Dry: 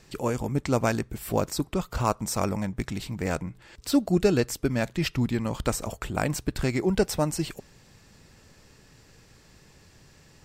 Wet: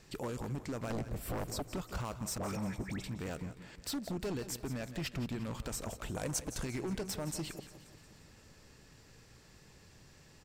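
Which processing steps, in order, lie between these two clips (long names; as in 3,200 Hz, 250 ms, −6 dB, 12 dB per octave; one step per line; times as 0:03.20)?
0:02.38–0:03.04: all-pass dispersion highs, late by 120 ms, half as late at 1,300 Hz
brickwall limiter −19.5 dBFS, peak gain reduction 9.5 dB
0:00.90–0:01.63: low-shelf EQ 470 Hz +11 dB
single-tap delay 161 ms −16 dB
downward compressor 1.5 to 1, threshold −35 dBFS, peak gain reduction 7 dB
wave folding −26.5 dBFS
0:06.14–0:06.65: thirty-one-band graphic EQ 500 Hz +8 dB, 1,000 Hz +5 dB, 6,300 Hz +10 dB, 10,000 Hz +10 dB
repeating echo 177 ms, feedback 59%, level −15.5 dB
level −4.5 dB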